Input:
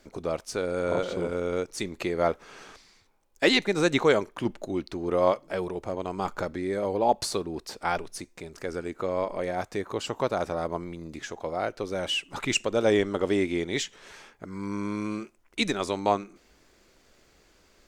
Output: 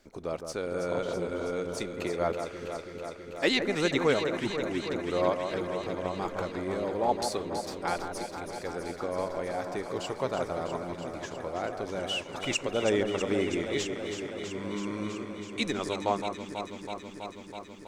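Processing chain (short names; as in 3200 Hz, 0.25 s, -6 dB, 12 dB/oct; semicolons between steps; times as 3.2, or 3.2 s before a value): echo with dull and thin repeats by turns 0.163 s, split 1800 Hz, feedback 89%, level -7 dB; gain -4.5 dB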